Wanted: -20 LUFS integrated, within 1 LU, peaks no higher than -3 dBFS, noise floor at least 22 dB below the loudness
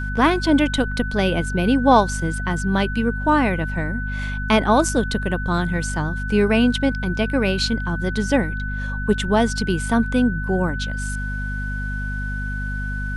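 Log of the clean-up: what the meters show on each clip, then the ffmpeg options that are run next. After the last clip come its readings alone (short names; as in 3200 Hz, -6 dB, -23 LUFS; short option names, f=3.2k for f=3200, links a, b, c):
hum 50 Hz; harmonics up to 250 Hz; hum level -24 dBFS; steady tone 1500 Hz; tone level -29 dBFS; loudness -21.0 LUFS; peak -3.5 dBFS; loudness target -20.0 LUFS
-> -af "bandreject=f=50:t=h:w=6,bandreject=f=100:t=h:w=6,bandreject=f=150:t=h:w=6,bandreject=f=200:t=h:w=6,bandreject=f=250:t=h:w=6"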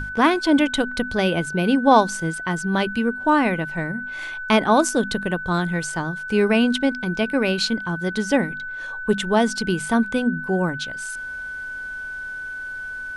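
hum none; steady tone 1500 Hz; tone level -29 dBFS
-> -af "bandreject=f=1.5k:w=30"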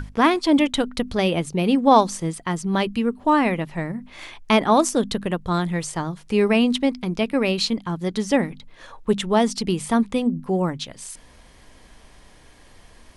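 steady tone none; loudness -21.5 LUFS; peak -3.5 dBFS; loudness target -20.0 LUFS
-> -af "volume=1.5dB,alimiter=limit=-3dB:level=0:latency=1"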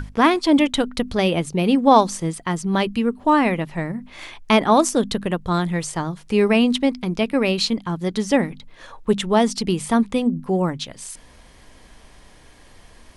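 loudness -20.0 LUFS; peak -3.0 dBFS; noise floor -48 dBFS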